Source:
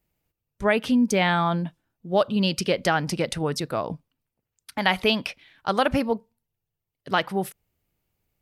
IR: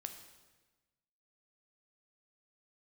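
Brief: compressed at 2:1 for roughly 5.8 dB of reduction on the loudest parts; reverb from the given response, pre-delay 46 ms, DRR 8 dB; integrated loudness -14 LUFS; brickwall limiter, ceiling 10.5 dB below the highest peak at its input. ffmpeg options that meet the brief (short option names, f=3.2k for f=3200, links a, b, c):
-filter_complex "[0:a]acompressor=threshold=-27dB:ratio=2,alimiter=limit=-22dB:level=0:latency=1,asplit=2[a][b];[1:a]atrim=start_sample=2205,adelay=46[c];[b][c]afir=irnorm=-1:irlink=0,volume=-4.5dB[d];[a][d]amix=inputs=2:normalize=0,volume=18.5dB"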